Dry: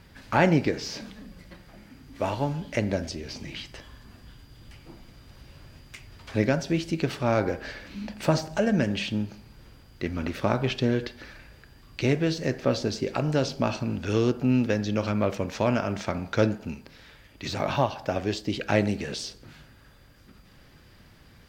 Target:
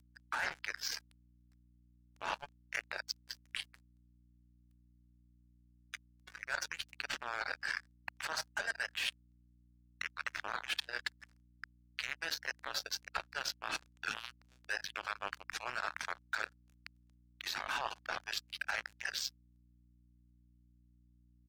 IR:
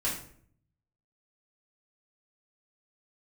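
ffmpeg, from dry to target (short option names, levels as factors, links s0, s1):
-af "alimiter=limit=0.126:level=0:latency=1:release=40,highpass=f=870:w=0.5412,highpass=f=870:w=1.3066,equalizer=f=1600:t=o:w=0.46:g=9,aecho=1:1:27|54:0.168|0.211,acompressor=mode=upward:threshold=0.0126:ratio=2.5,acrusher=bits=4:mix=0:aa=0.5,afftdn=nr=16:nf=-44,areverse,acompressor=threshold=0.0178:ratio=16,areverse,aeval=exprs='val(0)+0.000398*(sin(2*PI*60*n/s)+sin(2*PI*2*60*n/s)/2+sin(2*PI*3*60*n/s)/3+sin(2*PI*4*60*n/s)/4+sin(2*PI*5*60*n/s)/5)':c=same,volume=1.33"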